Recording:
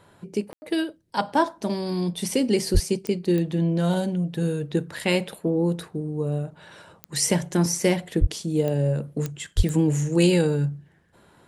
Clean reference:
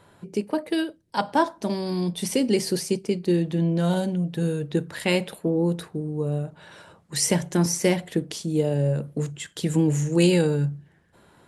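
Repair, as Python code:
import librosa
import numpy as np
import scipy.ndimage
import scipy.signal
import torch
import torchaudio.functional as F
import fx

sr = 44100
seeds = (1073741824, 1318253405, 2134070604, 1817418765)

y = fx.fix_declick_ar(x, sr, threshold=10.0)
y = fx.fix_deplosive(y, sr, at_s=(2.73, 8.2, 9.56))
y = fx.fix_ambience(y, sr, seeds[0], print_start_s=10.88, print_end_s=11.38, start_s=0.53, end_s=0.62)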